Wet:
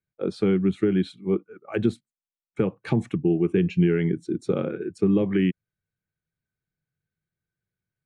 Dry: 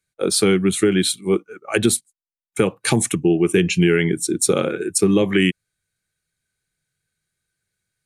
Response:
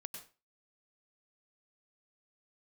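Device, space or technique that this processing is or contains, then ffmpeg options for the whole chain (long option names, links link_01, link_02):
phone in a pocket: -af "lowpass=3600,equalizer=frequency=160:width_type=o:width=2.4:gain=6,highshelf=frequency=2200:gain=-10,volume=-8.5dB"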